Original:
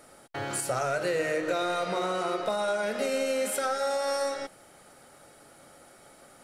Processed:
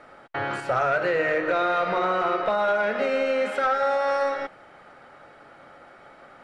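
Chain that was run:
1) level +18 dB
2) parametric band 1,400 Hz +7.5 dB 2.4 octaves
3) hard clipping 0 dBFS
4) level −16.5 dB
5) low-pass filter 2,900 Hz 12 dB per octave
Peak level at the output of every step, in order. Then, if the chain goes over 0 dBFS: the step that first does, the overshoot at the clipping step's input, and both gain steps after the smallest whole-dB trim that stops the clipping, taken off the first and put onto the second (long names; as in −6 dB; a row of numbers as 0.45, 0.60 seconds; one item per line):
+0.5, +5.5, 0.0, −16.5, −16.0 dBFS
step 1, 5.5 dB
step 1 +12 dB, step 4 −10.5 dB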